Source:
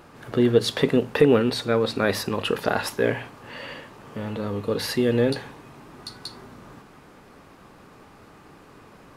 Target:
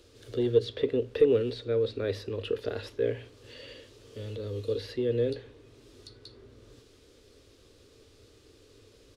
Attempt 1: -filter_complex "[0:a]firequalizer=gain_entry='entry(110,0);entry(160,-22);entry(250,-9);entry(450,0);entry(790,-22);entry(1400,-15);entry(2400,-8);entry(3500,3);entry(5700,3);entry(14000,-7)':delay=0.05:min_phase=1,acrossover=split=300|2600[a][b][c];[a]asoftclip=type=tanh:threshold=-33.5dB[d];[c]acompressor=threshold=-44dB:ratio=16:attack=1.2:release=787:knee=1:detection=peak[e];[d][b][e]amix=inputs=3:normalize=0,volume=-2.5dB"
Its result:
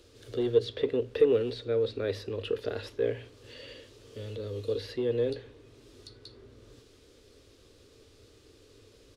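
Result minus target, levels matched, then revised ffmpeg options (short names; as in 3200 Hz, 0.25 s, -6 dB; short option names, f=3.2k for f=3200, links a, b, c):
soft clip: distortion +11 dB
-filter_complex "[0:a]firequalizer=gain_entry='entry(110,0);entry(160,-22);entry(250,-9);entry(450,0);entry(790,-22);entry(1400,-15);entry(2400,-8);entry(3500,3);entry(5700,3);entry(14000,-7)':delay=0.05:min_phase=1,acrossover=split=300|2600[a][b][c];[a]asoftclip=type=tanh:threshold=-24dB[d];[c]acompressor=threshold=-44dB:ratio=16:attack=1.2:release=787:knee=1:detection=peak[e];[d][b][e]amix=inputs=3:normalize=0,volume=-2.5dB"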